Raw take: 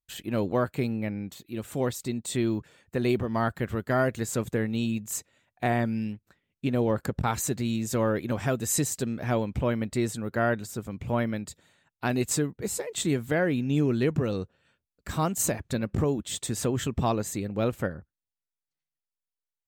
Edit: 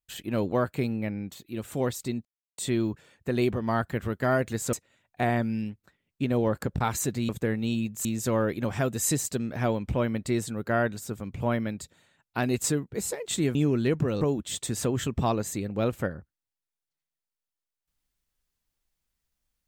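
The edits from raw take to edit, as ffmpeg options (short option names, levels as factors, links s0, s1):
-filter_complex "[0:a]asplit=7[s0][s1][s2][s3][s4][s5][s6];[s0]atrim=end=2.25,asetpts=PTS-STARTPTS,afade=t=out:st=2.246:d=0.004:c=hsin,apad=pad_dur=0.33[s7];[s1]atrim=start=2.25:end=4.402,asetpts=PTS-STARTPTS,afade=t=in:d=0.004:c=hsin[s8];[s2]atrim=start=5.158:end=7.722[s9];[s3]atrim=start=4.398:end=5.162[s10];[s4]atrim=start=7.718:end=13.222[s11];[s5]atrim=start=13.708:end=14.372[s12];[s6]atrim=start=16.008[s13];[s7][s8]concat=n=2:v=0:a=1[s14];[s14][s9]acrossfade=d=0.004:c1=hsin:c2=hsin[s15];[s15][s10]acrossfade=d=0.004:c1=hsin:c2=hsin[s16];[s16][s11]acrossfade=d=0.004:c1=hsin:c2=hsin[s17];[s17][s12]acrossfade=d=0.004:c1=hsin:c2=hsin[s18];[s18][s13]acrossfade=d=0.004:c1=hsin:c2=hsin"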